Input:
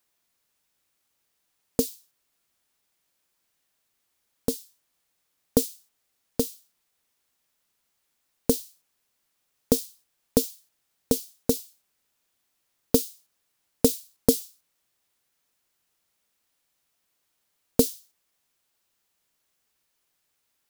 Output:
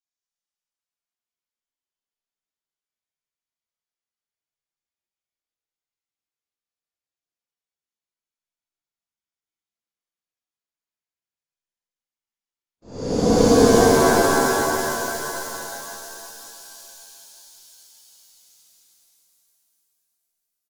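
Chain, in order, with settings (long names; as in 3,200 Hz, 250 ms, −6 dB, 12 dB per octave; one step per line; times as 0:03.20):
extreme stretch with random phases 25×, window 0.05 s, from 0:05.86
noise gate −59 dBFS, range −25 dB
downsampling to 16,000 Hz
reverb with rising layers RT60 2.9 s, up +7 semitones, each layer −2 dB, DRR −4.5 dB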